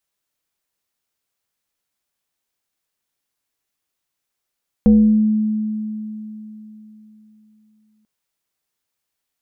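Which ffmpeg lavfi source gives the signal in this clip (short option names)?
-f lavfi -i "aevalsrc='0.473*pow(10,-3*t/3.65)*sin(2*PI*215*t+0.55*pow(10,-3*t/0.77)*sin(2*PI*1.25*215*t))':d=3.19:s=44100"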